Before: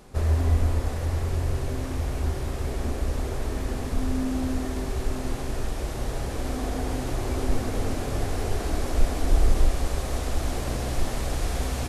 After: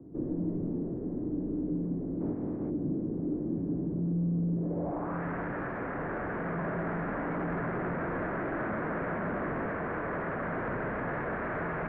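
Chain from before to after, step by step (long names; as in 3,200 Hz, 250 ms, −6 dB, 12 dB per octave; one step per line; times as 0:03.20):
0:02.20–0:02.69: ceiling on every frequency bin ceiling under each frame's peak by 28 dB
single-sideband voice off tune −87 Hz 170–2,400 Hz
surface crackle 61 per second −43 dBFS
soft clipping −30.5 dBFS, distortion −12 dB
low-pass filter sweep 300 Hz → 1,600 Hz, 0:04.54–0:05.22
level +1.5 dB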